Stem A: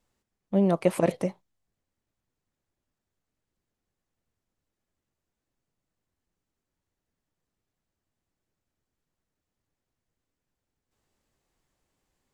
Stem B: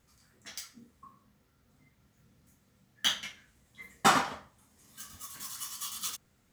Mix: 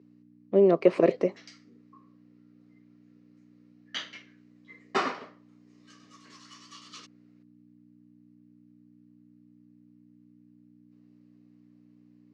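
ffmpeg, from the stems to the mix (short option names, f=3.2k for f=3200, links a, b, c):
-filter_complex "[0:a]acontrast=59,volume=-3.5dB[a];[1:a]adelay=900,volume=-1.5dB[b];[a][b]amix=inputs=2:normalize=0,aeval=exprs='val(0)+0.00562*(sin(2*PI*60*n/s)+sin(2*PI*2*60*n/s)/2+sin(2*PI*3*60*n/s)/3+sin(2*PI*4*60*n/s)/4+sin(2*PI*5*60*n/s)/5)':c=same,highpass=f=190:w=0.5412,highpass=f=190:w=1.3066,equalizer=f=200:t=q:w=4:g=-7,equalizer=f=400:t=q:w=4:g=8,equalizer=f=850:t=q:w=4:g=-9,equalizer=f=1.5k:t=q:w=4:g=-5,equalizer=f=3.4k:t=q:w=4:g=-9,lowpass=f=4.6k:w=0.5412,lowpass=f=4.6k:w=1.3066"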